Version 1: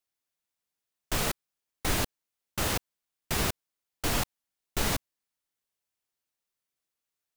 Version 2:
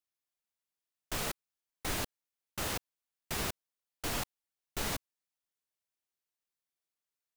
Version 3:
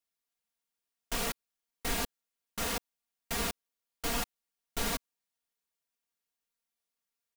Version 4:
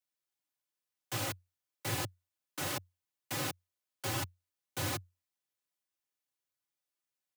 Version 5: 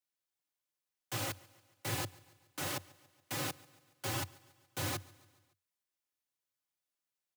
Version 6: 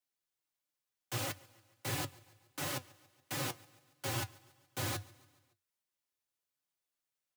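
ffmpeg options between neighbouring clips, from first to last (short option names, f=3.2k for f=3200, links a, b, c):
-af "lowshelf=f=220:g=-3.5,volume=-6dB"
-af "aecho=1:1:4.3:0.83"
-af "afreqshift=89,volume=-3dB"
-af "aecho=1:1:141|282|423|564:0.0708|0.0389|0.0214|0.0118,volume=-1.5dB"
-af "flanger=delay=6.6:depth=3.1:regen=62:speed=1.5:shape=triangular,volume=4dB"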